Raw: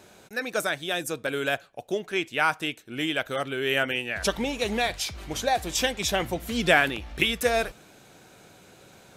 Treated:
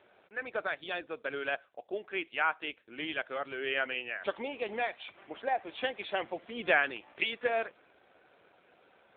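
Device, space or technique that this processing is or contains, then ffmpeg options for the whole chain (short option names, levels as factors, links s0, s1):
telephone: -filter_complex "[0:a]asplit=3[s0][s1][s2];[s0]afade=t=out:st=5.17:d=0.02[s3];[s1]equalizer=f=3400:w=2.8:g=-5.5,afade=t=in:st=5.17:d=0.02,afade=t=out:st=5.68:d=0.02[s4];[s2]afade=t=in:st=5.68:d=0.02[s5];[s3][s4][s5]amix=inputs=3:normalize=0,highpass=390,lowpass=3300,volume=0.562" -ar 8000 -c:a libopencore_amrnb -b:a 7400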